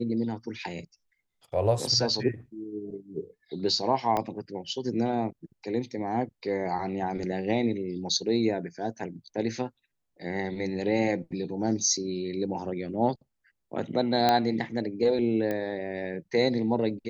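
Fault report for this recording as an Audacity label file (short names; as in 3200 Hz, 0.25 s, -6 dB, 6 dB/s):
4.170000	4.170000	pop -15 dBFS
14.290000	14.290000	pop -9 dBFS
15.510000	15.510000	pop -18 dBFS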